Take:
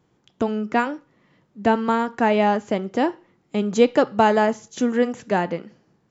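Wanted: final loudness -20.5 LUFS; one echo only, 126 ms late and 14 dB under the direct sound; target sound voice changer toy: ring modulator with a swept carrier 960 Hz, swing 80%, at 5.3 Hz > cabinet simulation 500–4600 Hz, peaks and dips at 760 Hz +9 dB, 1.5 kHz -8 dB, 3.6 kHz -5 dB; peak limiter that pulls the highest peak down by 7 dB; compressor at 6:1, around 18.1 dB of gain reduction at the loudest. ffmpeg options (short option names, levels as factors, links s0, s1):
-af "acompressor=threshold=0.0282:ratio=6,alimiter=level_in=1.19:limit=0.0631:level=0:latency=1,volume=0.841,aecho=1:1:126:0.2,aeval=exprs='val(0)*sin(2*PI*960*n/s+960*0.8/5.3*sin(2*PI*5.3*n/s))':c=same,highpass=500,equalizer=f=760:t=q:w=4:g=9,equalizer=f=1500:t=q:w=4:g=-8,equalizer=f=3600:t=q:w=4:g=-5,lowpass=f=4600:w=0.5412,lowpass=f=4600:w=1.3066,volume=8.91"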